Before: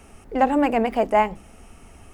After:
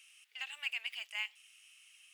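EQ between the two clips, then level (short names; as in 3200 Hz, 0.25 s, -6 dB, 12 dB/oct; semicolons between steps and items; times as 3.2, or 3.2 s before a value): ladder high-pass 2500 Hz, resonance 55%; +2.5 dB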